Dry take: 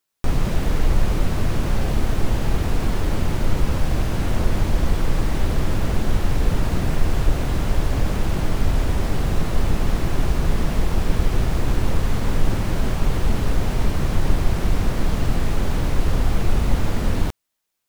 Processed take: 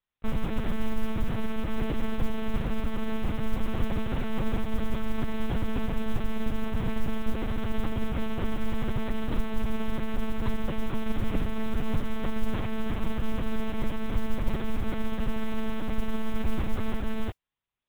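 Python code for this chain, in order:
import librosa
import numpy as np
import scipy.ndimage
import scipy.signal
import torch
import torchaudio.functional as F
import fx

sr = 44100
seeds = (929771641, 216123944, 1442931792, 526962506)

y = fx.lpc_monotone(x, sr, seeds[0], pitch_hz=220.0, order=8)
y = fx.mod_noise(y, sr, seeds[1], snr_db=34)
y = y * librosa.db_to_amplitude(-7.0)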